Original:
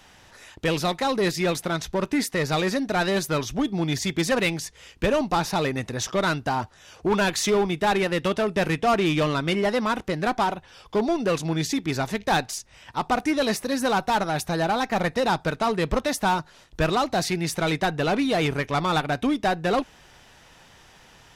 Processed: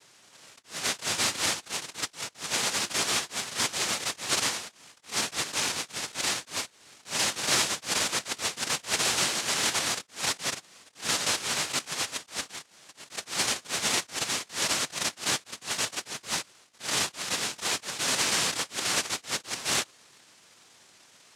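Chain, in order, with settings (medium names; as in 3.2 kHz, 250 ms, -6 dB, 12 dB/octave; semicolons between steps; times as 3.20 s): every band turned upside down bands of 1 kHz; noise-vocoded speech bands 1; attacks held to a fixed rise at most 230 dB/s; trim -4.5 dB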